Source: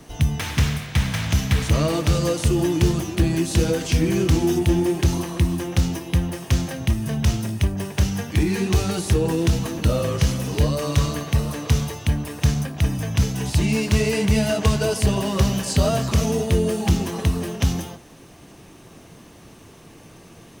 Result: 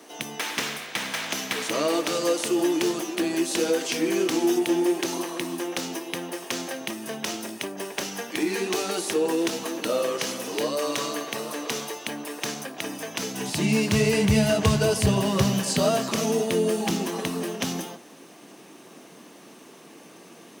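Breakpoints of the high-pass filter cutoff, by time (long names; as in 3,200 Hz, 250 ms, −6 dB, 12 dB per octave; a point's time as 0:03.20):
high-pass filter 24 dB per octave
0:13.17 290 Hz
0:14.18 89 Hz
0:15.18 89 Hz
0:15.97 210 Hz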